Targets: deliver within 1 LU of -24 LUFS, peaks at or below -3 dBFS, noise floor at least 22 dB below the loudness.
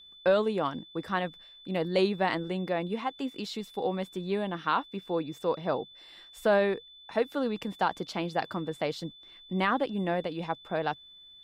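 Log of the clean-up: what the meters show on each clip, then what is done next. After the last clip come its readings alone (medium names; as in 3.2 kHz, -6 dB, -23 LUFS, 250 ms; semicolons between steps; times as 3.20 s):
steady tone 3.5 kHz; tone level -50 dBFS; loudness -31.0 LUFS; peak level -15.5 dBFS; loudness target -24.0 LUFS
-> band-stop 3.5 kHz, Q 30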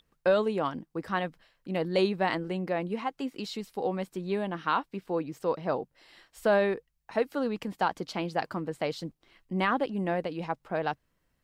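steady tone not found; loudness -31.0 LUFS; peak level -15.0 dBFS; loudness target -24.0 LUFS
-> trim +7 dB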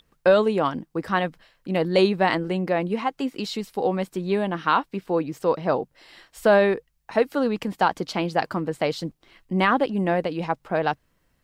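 loudness -24.0 LUFS; peak level -8.0 dBFS; noise floor -69 dBFS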